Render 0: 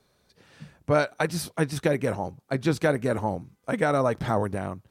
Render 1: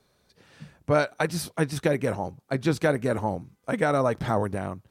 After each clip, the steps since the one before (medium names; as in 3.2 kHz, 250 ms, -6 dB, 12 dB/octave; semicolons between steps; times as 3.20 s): no audible change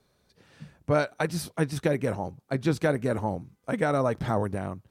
bass shelf 400 Hz +3 dB; trim -3 dB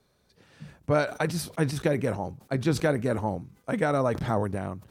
decay stretcher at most 130 dB/s